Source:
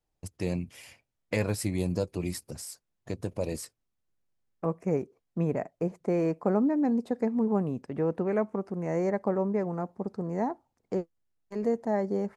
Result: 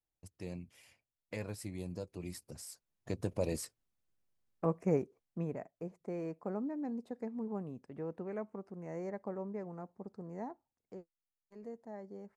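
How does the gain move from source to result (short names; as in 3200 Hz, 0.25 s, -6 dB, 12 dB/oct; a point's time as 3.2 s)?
2.05 s -13 dB
3.19 s -2.5 dB
4.94 s -2.5 dB
5.67 s -13 dB
10.51 s -13 dB
11 s -19 dB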